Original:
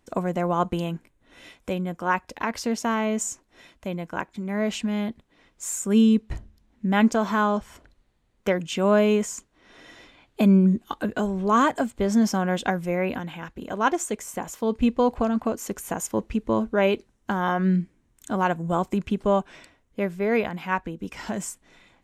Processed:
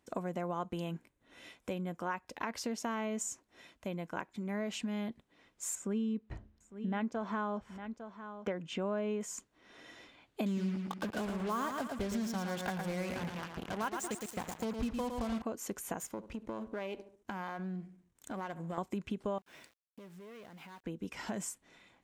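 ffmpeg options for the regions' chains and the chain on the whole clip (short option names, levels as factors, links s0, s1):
-filter_complex "[0:a]asettb=1/sr,asplit=3[s0][s1][s2];[s0]atrim=end=5.754[s3];[s1]atrim=start=5.75:end=9.21,asetpts=PTS-STARTPTS,afade=t=in:d=0.004:c=qsin,afade=t=out:st=3.456:d=0.004:c=qsin,aemphasis=mode=reproduction:type=75fm,aecho=1:1:854:0.119,atrim=end_sample=152586[s4];[s2]atrim=start=9.206[s5];[s3][s4]acrossfade=d=0.004:c1=hsin:c2=qsin[s6];[s6][s5]acrossfade=d=0.004:c1=qsin:c2=hsin,asettb=1/sr,asplit=3[s7][s8][s9];[s7]atrim=end=10.464[s10];[s8]atrim=start=10.46:end=15.42,asetpts=PTS-STARTPTS,afade=t=in:d=0.004:c=qsin,afade=t=out:st=4.956:d=0.004:c=qsin,asubboost=boost=5.5:cutoff=140,acrusher=bits=4:mix=0:aa=0.5,aecho=1:1:112|224|336|448:0.473|0.151|0.0485|0.0155,atrim=end_sample=218736[s11];[s9]atrim=start=15.416[s12];[s10][s11]acrossfade=d=0.004:c1=hsin:c2=qsin[s13];[s13][s12]acrossfade=d=0.004:c1=qsin:c2=hsin,asettb=1/sr,asplit=3[s14][s15][s16];[s14]atrim=end=15.994[s17];[s15]atrim=start=15.99:end=18.78,asetpts=PTS-STARTPTS,afade=t=in:d=0.004:c=qsin,afade=t=out:st=2.786:d=0.004:c=qsin,aeval=exprs='if(lt(val(0),0),0.447*val(0),val(0))':c=same,asplit=2[s18][s19];[s19]adelay=70,lowpass=f=1600:p=1,volume=0.0891,asplit=2[s20][s21];[s21]adelay=70,lowpass=f=1600:p=1,volume=0.49,asplit=2[s22][s23];[s23]adelay=70,lowpass=f=1600:p=1,volume=0.49,asplit=2[s24][s25];[s25]adelay=70,lowpass=f=1600:p=1,volume=0.49[s26];[s18][s20][s22][s24][s26]amix=inputs=5:normalize=0,atrim=end_sample=123039,acompressor=threshold=0.0355:ratio=4:attack=3.2:release=140:knee=1:detection=peak[s27];[s16]atrim=start=18.776[s28];[s17][s27]acrossfade=d=0.004:c1=hsin:c2=qsin[s29];[s29][s28]acrossfade=d=0.004:c1=qsin:c2=hsin,asettb=1/sr,asplit=3[s30][s31][s32];[s30]atrim=end=19.384[s33];[s31]atrim=start=19.38:end=20.84,asetpts=PTS-STARTPTS,afade=t=in:d=0.004:c=qsin,afade=t=out:st=1.456:d=0.004:c=qsin,aeval=exprs='(tanh(20*val(0)+0.35)-tanh(0.35))/20':c=same,acompressor=threshold=0.00891:ratio=12:attack=3.2:release=140:knee=1:detection=peak,aeval=exprs='val(0)*gte(abs(val(0)),0.00224)':c=same[s34];[s32]atrim=start=20.836[s35];[s33][s34]acrossfade=d=0.004:c1=hsin:c2=qsin[s36];[s36][s35]acrossfade=d=0.004:c1=qsin:c2=hsin,highpass=f=100:p=1,acompressor=threshold=0.0398:ratio=4,volume=0.501"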